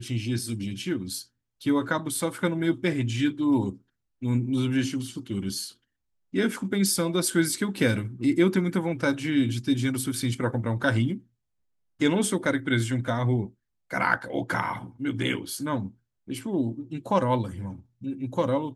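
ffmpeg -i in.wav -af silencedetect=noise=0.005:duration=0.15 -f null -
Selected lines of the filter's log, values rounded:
silence_start: 1.24
silence_end: 1.61 | silence_duration: 0.37
silence_start: 3.78
silence_end: 4.22 | silence_duration: 0.44
silence_start: 5.73
silence_end: 6.33 | silence_duration: 0.60
silence_start: 11.20
silence_end: 12.00 | silence_duration: 0.80
silence_start: 13.50
silence_end: 13.91 | silence_duration: 0.40
silence_start: 15.91
silence_end: 16.27 | silence_duration: 0.36
silence_start: 17.81
silence_end: 18.01 | silence_duration: 0.21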